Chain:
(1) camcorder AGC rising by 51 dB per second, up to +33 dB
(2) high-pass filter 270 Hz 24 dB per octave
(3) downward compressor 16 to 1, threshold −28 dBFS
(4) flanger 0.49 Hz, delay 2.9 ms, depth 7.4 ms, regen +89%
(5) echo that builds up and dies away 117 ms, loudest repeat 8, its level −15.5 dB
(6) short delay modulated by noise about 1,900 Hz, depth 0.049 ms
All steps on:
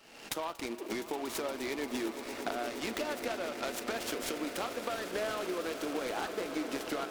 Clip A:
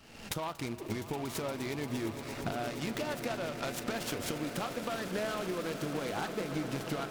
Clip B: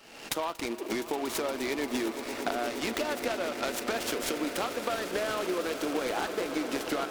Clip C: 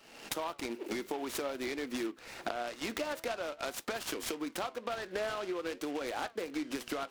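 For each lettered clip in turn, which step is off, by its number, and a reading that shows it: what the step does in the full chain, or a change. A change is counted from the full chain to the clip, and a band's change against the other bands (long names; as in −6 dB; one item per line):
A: 2, 125 Hz band +15.5 dB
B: 4, change in integrated loudness +4.5 LU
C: 5, change in crest factor +2.0 dB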